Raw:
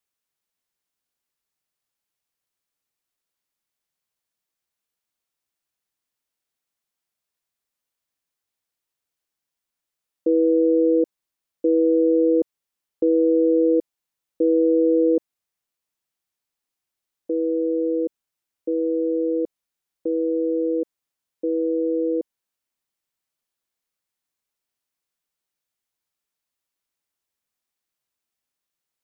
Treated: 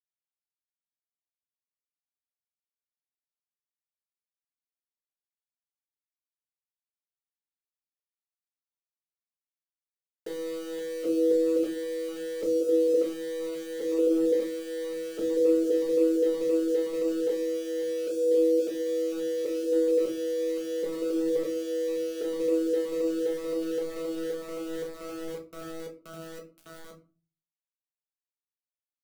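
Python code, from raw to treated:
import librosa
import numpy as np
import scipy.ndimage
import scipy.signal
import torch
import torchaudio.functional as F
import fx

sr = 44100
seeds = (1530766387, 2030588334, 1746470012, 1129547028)

p1 = scipy.signal.sosfilt(scipy.signal.cheby1(3, 1.0, 360.0, 'highpass', fs=sr, output='sos'), x)
p2 = fx.low_shelf(p1, sr, hz=470.0, db=-6.5)
p3 = p2 + fx.echo_wet_lowpass(p2, sr, ms=522, feedback_pct=78, hz=520.0, wet_db=-11.0, dry=0)
p4 = 10.0 ** (-17.5 / 20.0) * np.tanh(p3 / 10.0 ** (-17.5 / 20.0))
p5 = fx.over_compress(p4, sr, threshold_db=-36.0, ratio=-1.0)
p6 = np.where(np.abs(p5) >= 10.0 ** (-45.5 / 20.0), p5, 0.0)
p7 = fx.room_shoebox(p6, sr, seeds[0], volume_m3=160.0, walls='furnished', distance_m=1.5)
p8 = fx.notch_cascade(p7, sr, direction='rising', hz=2.0)
y = F.gain(torch.from_numpy(p8), 7.0).numpy()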